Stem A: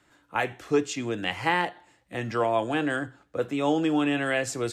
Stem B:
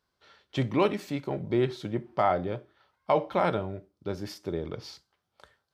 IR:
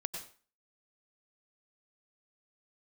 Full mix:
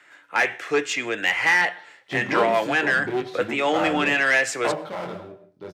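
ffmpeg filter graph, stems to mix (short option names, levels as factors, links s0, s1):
-filter_complex "[0:a]equalizer=f=250:t=o:w=1:g=-6,equalizer=f=1000:t=o:w=1:g=-4,equalizer=f=2000:t=o:w=1:g=8,equalizer=f=4000:t=o:w=1:g=-3,asplit=2[s0][s1];[s1]highpass=f=720:p=1,volume=7.08,asoftclip=type=tanh:threshold=0.398[s2];[s0][s2]amix=inputs=2:normalize=0,lowpass=f=3900:p=1,volume=0.501,volume=0.841,asplit=3[s3][s4][s5];[s4]volume=0.075[s6];[1:a]flanger=delay=18.5:depth=4.9:speed=0.65,aeval=exprs='clip(val(0),-1,0.02)':c=same,adelay=1550,volume=1.33,asplit=2[s7][s8];[s8]volume=0.501[s9];[s5]apad=whole_len=325491[s10];[s7][s10]sidechaingate=range=0.355:threshold=0.00251:ratio=16:detection=peak[s11];[2:a]atrim=start_sample=2205[s12];[s6][s9]amix=inputs=2:normalize=0[s13];[s13][s12]afir=irnorm=-1:irlink=0[s14];[s3][s11][s14]amix=inputs=3:normalize=0,highpass=160"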